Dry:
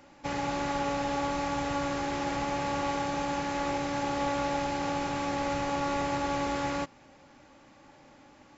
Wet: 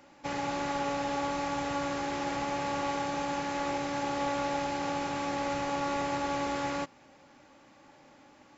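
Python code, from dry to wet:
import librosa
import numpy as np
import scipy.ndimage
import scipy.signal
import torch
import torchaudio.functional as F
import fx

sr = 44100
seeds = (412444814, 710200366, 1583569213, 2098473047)

y = fx.low_shelf(x, sr, hz=100.0, db=-8.5)
y = y * librosa.db_to_amplitude(-1.0)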